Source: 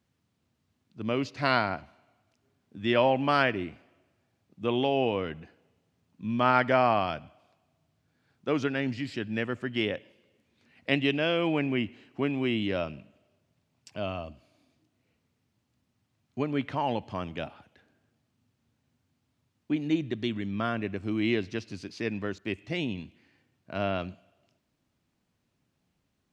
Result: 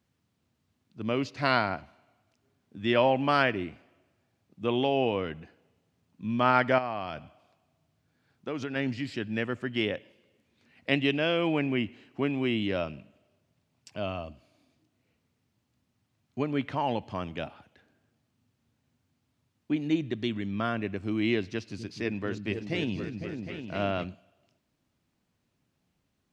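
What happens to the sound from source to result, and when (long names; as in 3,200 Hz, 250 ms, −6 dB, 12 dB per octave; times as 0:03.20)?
0:06.78–0:08.76: downward compressor 3 to 1, threshold −31 dBFS
0:21.48–0:24.04: echo whose low-pass opens from repeat to repeat 253 ms, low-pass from 200 Hz, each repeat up 2 octaves, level −3 dB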